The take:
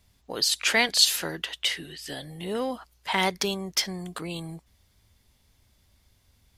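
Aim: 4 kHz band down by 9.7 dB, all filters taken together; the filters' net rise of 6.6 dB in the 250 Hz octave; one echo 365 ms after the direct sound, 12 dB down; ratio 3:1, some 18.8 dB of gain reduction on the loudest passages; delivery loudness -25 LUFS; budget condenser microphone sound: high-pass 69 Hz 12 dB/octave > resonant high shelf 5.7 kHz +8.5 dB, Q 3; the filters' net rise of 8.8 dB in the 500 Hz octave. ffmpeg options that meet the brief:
-af "equalizer=f=250:t=o:g=6.5,equalizer=f=500:t=o:g=9,equalizer=f=4000:t=o:g=-8,acompressor=threshold=0.00794:ratio=3,highpass=69,highshelf=f=5700:t=q:w=3:g=8.5,aecho=1:1:365:0.251,volume=3.55"

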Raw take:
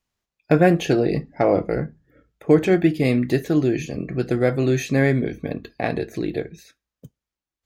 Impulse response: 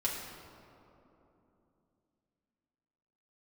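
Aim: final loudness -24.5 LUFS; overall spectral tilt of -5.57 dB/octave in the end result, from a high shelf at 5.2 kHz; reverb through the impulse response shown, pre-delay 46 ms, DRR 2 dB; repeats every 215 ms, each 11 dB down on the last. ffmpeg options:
-filter_complex "[0:a]highshelf=f=5200:g=7,aecho=1:1:215|430|645:0.282|0.0789|0.0221,asplit=2[s0][s1];[1:a]atrim=start_sample=2205,adelay=46[s2];[s1][s2]afir=irnorm=-1:irlink=0,volume=0.447[s3];[s0][s3]amix=inputs=2:normalize=0,volume=0.501"

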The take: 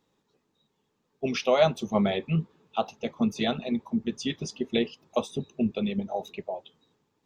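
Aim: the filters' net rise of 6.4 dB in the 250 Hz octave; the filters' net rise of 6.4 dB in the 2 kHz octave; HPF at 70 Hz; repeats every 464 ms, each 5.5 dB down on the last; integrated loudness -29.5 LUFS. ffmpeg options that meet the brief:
-af "highpass=70,equalizer=f=250:t=o:g=7.5,equalizer=f=2000:t=o:g=8,aecho=1:1:464|928|1392|1856|2320|2784|3248:0.531|0.281|0.149|0.079|0.0419|0.0222|0.0118,volume=0.473"

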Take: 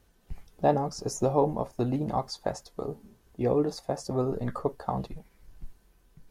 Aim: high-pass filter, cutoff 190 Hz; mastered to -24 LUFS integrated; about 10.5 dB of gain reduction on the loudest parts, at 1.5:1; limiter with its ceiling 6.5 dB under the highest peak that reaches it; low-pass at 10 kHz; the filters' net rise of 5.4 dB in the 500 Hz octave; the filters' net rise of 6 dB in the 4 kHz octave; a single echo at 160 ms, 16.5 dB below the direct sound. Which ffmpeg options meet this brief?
-af "highpass=190,lowpass=10000,equalizer=f=500:t=o:g=6.5,equalizer=f=4000:t=o:g=8,acompressor=threshold=0.00631:ratio=1.5,alimiter=limit=0.0631:level=0:latency=1,aecho=1:1:160:0.15,volume=4.47"

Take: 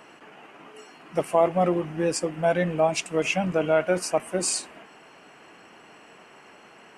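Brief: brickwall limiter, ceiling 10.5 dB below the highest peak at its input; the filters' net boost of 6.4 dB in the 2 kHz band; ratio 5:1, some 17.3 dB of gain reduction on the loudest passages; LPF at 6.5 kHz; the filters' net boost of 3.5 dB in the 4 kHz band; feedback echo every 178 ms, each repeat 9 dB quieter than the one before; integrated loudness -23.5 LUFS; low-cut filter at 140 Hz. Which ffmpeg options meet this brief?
-af "highpass=140,lowpass=6500,equalizer=f=2000:t=o:g=8,equalizer=f=4000:t=o:g=3,acompressor=threshold=0.02:ratio=5,alimiter=level_in=2.11:limit=0.0631:level=0:latency=1,volume=0.473,aecho=1:1:178|356|534|712:0.355|0.124|0.0435|0.0152,volume=7.5"

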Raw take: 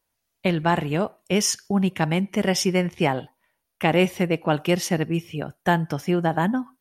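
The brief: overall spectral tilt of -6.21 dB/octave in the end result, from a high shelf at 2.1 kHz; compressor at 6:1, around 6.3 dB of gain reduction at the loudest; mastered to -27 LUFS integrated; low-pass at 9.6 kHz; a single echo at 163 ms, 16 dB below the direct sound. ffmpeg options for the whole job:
-af "lowpass=9600,highshelf=f=2100:g=-8.5,acompressor=threshold=0.0708:ratio=6,aecho=1:1:163:0.158,volume=1.26"

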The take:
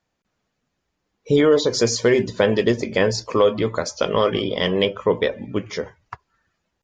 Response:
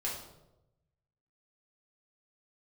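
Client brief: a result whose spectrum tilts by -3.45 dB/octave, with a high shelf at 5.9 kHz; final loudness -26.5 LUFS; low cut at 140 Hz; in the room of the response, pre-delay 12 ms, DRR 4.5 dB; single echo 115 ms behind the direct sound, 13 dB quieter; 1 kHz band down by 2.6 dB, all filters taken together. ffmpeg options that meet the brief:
-filter_complex "[0:a]highpass=140,equalizer=f=1000:t=o:g=-3.5,highshelf=f=5900:g=9,aecho=1:1:115:0.224,asplit=2[s0][s1];[1:a]atrim=start_sample=2205,adelay=12[s2];[s1][s2]afir=irnorm=-1:irlink=0,volume=0.398[s3];[s0][s3]amix=inputs=2:normalize=0,volume=0.398"

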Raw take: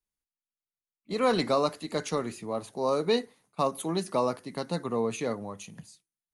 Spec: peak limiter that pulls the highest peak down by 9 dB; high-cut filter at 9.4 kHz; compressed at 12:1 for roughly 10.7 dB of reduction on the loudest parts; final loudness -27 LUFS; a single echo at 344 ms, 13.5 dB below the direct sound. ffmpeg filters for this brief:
-af "lowpass=9400,acompressor=threshold=0.0282:ratio=12,alimiter=level_in=1.58:limit=0.0631:level=0:latency=1,volume=0.631,aecho=1:1:344:0.211,volume=4.22"

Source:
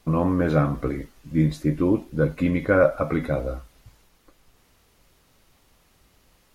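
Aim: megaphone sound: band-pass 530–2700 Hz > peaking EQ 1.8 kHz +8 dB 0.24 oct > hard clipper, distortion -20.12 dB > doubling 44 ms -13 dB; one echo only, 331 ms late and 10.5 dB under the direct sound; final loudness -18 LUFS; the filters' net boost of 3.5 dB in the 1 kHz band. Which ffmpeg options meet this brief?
-filter_complex "[0:a]highpass=530,lowpass=2700,equalizer=f=1000:t=o:g=5,equalizer=f=1800:t=o:w=0.24:g=8,aecho=1:1:331:0.299,asoftclip=type=hard:threshold=0.251,asplit=2[s0][s1];[s1]adelay=44,volume=0.224[s2];[s0][s2]amix=inputs=2:normalize=0,volume=2.99"

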